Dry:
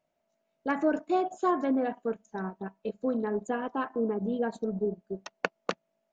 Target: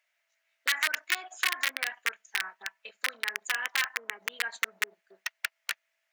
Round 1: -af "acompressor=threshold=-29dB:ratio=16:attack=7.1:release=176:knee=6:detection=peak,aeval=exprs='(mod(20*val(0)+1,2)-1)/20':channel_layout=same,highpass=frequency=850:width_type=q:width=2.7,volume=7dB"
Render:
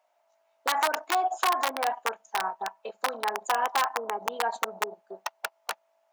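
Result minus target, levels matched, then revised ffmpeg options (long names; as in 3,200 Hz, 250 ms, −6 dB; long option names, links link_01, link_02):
1,000 Hz band +12.5 dB
-af "acompressor=threshold=-29dB:ratio=16:attack=7.1:release=176:knee=6:detection=peak,aeval=exprs='(mod(20*val(0)+1,2)-1)/20':channel_layout=same,highpass=frequency=1900:width_type=q:width=2.7,volume=7dB"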